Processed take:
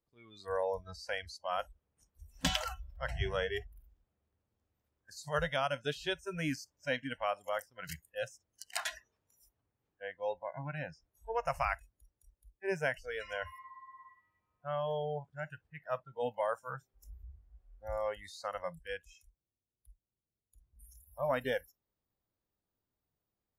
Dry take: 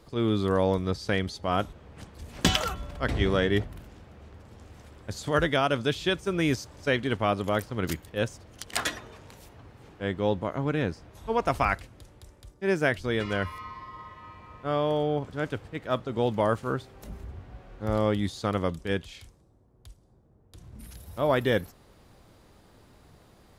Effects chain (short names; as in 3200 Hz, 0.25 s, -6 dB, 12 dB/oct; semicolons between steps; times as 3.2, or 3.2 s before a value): spectral noise reduction 27 dB; gain -7.5 dB